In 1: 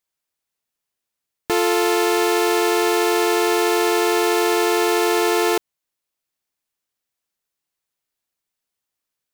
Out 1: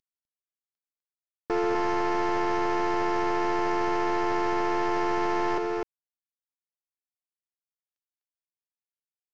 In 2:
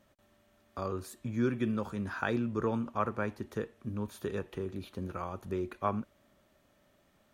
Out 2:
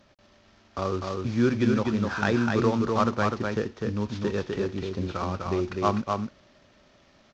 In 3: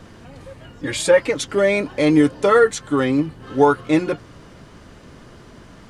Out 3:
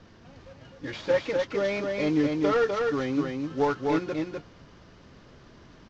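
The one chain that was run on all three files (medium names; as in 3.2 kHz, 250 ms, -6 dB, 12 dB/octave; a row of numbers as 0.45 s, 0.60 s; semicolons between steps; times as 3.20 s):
CVSD coder 32 kbps; on a send: delay 251 ms -3.5 dB; on the sum: normalise loudness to -27 LUFS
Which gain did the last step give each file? -6.0 dB, +7.5 dB, -10.0 dB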